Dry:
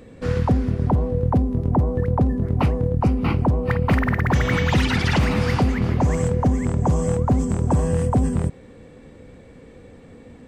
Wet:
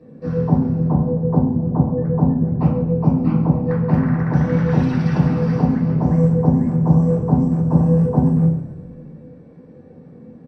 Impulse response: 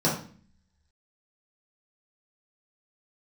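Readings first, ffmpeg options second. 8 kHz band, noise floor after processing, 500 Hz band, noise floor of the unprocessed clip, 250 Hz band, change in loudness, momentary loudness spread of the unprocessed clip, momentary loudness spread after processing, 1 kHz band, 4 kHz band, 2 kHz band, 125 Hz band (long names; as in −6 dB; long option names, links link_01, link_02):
below −15 dB, −43 dBFS, +1.5 dB, −46 dBFS, +6.0 dB, +3.5 dB, 2 LU, 4 LU, −2.5 dB, below −10 dB, −9.0 dB, +4.0 dB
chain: -filter_complex "[0:a]highshelf=frequency=4200:gain=-11.5,asplit=8[link_01][link_02][link_03][link_04][link_05][link_06][link_07][link_08];[link_02]adelay=132,afreqshift=-58,volume=-12.5dB[link_09];[link_03]adelay=264,afreqshift=-116,volume=-16.7dB[link_10];[link_04]adelay=396,afreqshift=-174,volume=-20.8dB[link_11];[link_05]adelay=528,afreqshift=-232,volume=-25dB[link_12];[link_06]adelay=660,afreqshift=-290,volume=-29.1dB[link_13];[link_07]adelay=792,afreqshift=-348,volume=-33.3dB[link_14];[link_08]adelay=924,afreqshift=-406,volume=-37.4dB[link_15];[link_01][link_09][link_10][link_11][link_12][link_13][link_14][link_15]amix=inputs=8:normalize=0[link_16];[1:a]atrim=start_sample=2205[link_17];[link_16][link_17]afir=irnorm=-1:irlink=0,volume=-18dB"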